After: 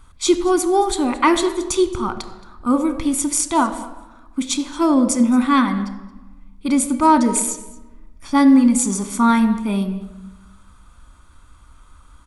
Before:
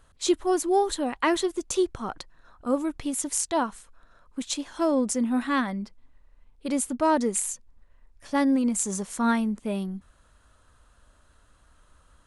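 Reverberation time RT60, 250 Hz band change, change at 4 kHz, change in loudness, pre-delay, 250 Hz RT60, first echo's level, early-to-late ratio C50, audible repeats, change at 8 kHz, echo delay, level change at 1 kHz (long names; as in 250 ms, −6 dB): 1.1 s, +10.0 dB, +7.5 dB, +9.0 dB, 3 ms, 1.4 s, −20.5 dB, 11.5 dB, 1, +7.5 dB, 223 ms, +9.5 dB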